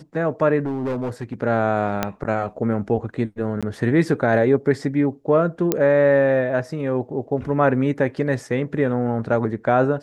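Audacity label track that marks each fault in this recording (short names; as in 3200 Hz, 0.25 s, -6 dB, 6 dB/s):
0.610000	1.340000	clipped -21 dBFS
2.030000	2.030000	pop -6 dBFS
3.610000	3.630000	gap 16 ms
5.720000	5.720000	pop -4 dBFS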